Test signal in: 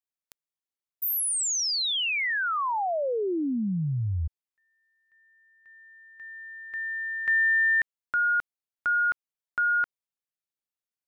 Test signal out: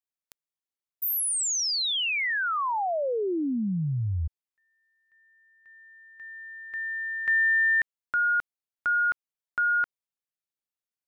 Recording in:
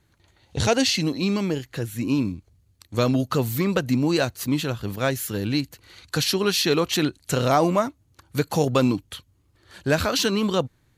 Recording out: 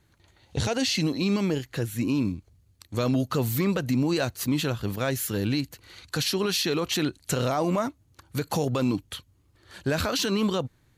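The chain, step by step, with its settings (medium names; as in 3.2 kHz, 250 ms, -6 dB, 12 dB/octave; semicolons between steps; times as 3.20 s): peak limiter -16.5 dBFS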